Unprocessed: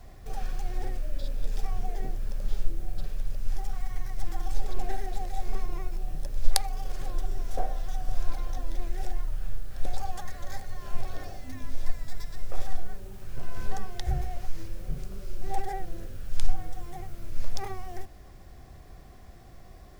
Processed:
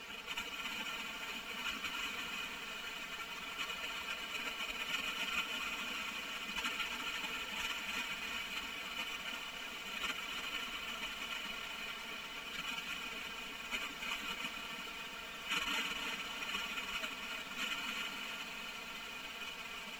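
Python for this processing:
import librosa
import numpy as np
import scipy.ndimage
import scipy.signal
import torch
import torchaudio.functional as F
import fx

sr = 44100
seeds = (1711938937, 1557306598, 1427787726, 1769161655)

y = fx.bin_compress(x, sr, power=0.2)
y = fx.highpass(y, sr, hz=370.0, slope=6)
y = fx.spec_gate(y, sr, threshold_db=-30, keep='weak')
y = fx.quant_dither(y, sr, seeds[0], bits=10, dither='none')
y = scipy.signal.sosfilt(scipy.signal.butter(2, 2900.0, 'lowpass', fs=sr, output='sos'), y)
y = y + 0.81 * np.pad(y, (int(4.4 * sr / 1000.0), 0))[:len(y)]
y = fx.echo_feedback(y, sr, ms=343, feedback_pct=57, wet_db=-7.0)
y = fx.echo_crushed(y, sr, ms=285, feedback_pct=55, bits=13, wet_db=-7.0)
y = y * 10.0 ** (18.0 / 20.0)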